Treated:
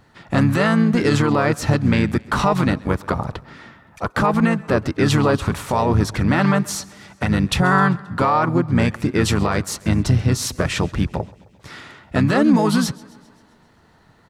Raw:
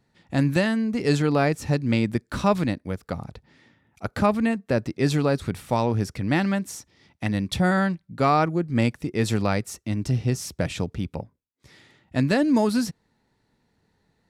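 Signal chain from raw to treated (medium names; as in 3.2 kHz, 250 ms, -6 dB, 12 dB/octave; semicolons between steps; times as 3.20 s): peaking EQ 1.2 kHz +8.5 dB 1.1 oct; in parallel at 0 dB: compression, threshold -34 dBFS, peak gain reduction 21.5 dB; on the sum: peak limiter -14.5 dBFS, peak gain reduction 11.5 dB; harmony voices -5 st -4 dB; modulated delay 132 ms, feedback 60%, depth 70 cents, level -23 dB; trim +5 dB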